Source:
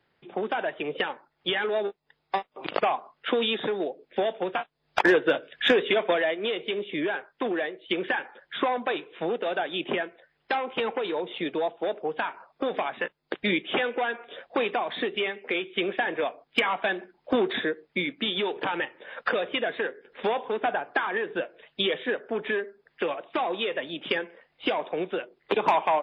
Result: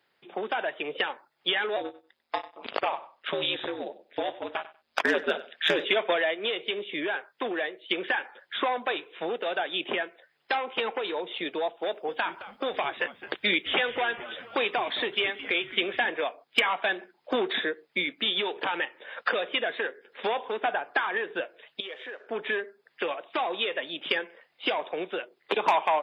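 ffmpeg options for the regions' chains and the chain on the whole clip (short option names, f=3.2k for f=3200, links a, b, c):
-filter_complex "[0:a]asettb=1/sr,asplit=3[a][b][c];[a]atrim=end=1.764[d];[b]atrim=start=1.76:end=5.85,asetpts=PTS-STARTPTS,afade=t=in:d=0.004:c=qsin,afade=t=out:st=4.086:d=0.004:c=qsin,aeval=exprs='val(0)*sin(2*PI*80*n/s)':c=same,asplit=2[e][f];[f]adelay=96,lowpass=f=4.9k:p=1,volume=-16dB,asplit=2[g][h];[h]adelay=96,lowpass=f=4.9k:p=1,volume=0.18[i];[e][g][i]amix=inputs=3:normalize=0,atrim=end_sample=180369[j];[c]atrim=start=5.846[k];[d][j]acrossfade=d=0.004:c1=hsin:c2=qsin[l];[l][k]acrossfade=d=0.004:c1=qsin:c2=hsin,asettb=1/sr,asplit=3[m][n][o];[m]atrim=end=11.864[p];[n]atrim=start=11.86:end=16.1,asetpts=PTS-STARTPTS,afade=t=in:d=0.004:c=qsin,afade=t=out:st=4.236:d=0.004:c=qsin,highshelf=f=4k:g=5.5,asplit=6[q][r][s][t][u][v];[r]adelay=216,afreqshift=-130,volume=-14dB[w];[s]adelay=432,afreqshift=-260,volume=-20.4dB[x];[t]adelay=648,afreqshift=-390,volume=-26.8dB[y];[u]adelay=864,afreqshift=-520,volume=-33.1dB[z];[v]adelay=1080,afreqshift=-650,volume=-39.5dB[aa];[q][w][x][y][z][aa]amix=inputs=6:normalize=0,atrim=end_sample=186984[ab];[o]atrim=start=16.096[ac];[p][ab]acrossfade=d=0.004:c1=hsin:c2=qsin[ad];[ad][ac]acrossfade=d=0.004:c1=qsin:c2=hsin,asettb=1/sr,asplit=3[ae][af][ag];[ae]atrim=end=21.804[ah];[af]atrim=start=21.8:end=22.27,asetpts=PTS-STARTPTS,afade=t=in:d=0.004:c=qsin,afade=t=out:st=0.466:d=0.004:c=qsin,acompressor=threshold=-35dB:ratio=3:attack=3.2:release=140:knee=1:detection=peak,aeval=exprs='sgn(val(0))*max(abs(val(0))-0.001,0)':c=same,highpass=380,lowpass=2.9k[ai];[ag]atrim=start=22.266[aj];[ah][ai]acrossfade=d=0.004:c1=hsin:c2=qsin[ak];[ak][aj]acrossfade=d=0.004:c1=qsin:c2=hsin,highpass=f=450:p=1,highshelf=f=4.5k:g=7"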